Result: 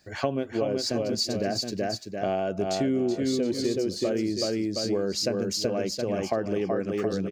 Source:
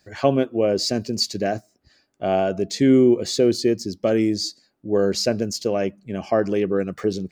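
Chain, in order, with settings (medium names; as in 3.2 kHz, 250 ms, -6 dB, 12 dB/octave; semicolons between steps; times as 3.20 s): multi-tap echo 376/718 ms -4/-11 dB; compression 5:1, threshold -24 dBFS, peak gain reduction 12 dB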